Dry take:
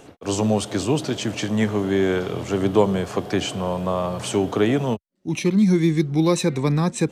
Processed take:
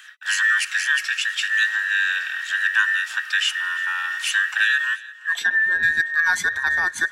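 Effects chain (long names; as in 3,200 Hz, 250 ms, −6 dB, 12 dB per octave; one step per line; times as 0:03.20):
frequency inversion band by band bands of 2,000 Hz
0:05.34–0:05.83: treble cut that deepens with the level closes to 1,700 Hz, closed at −13 dBFS
speech leveller within 3 dB 2 s
high-pass filter sweep 2,400 Hz → 68 Hz, 0:05.12–0:05.75
on a send: feedback echo with a high-pass in the loop 343 ms, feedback 57%, level −20.5 dB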